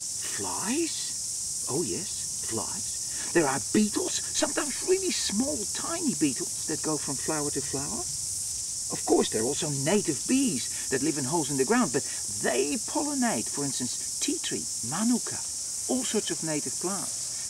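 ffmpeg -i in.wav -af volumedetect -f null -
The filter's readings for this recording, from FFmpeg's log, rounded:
mean_volume: -28.7 dB
max_volume: -10.9 dB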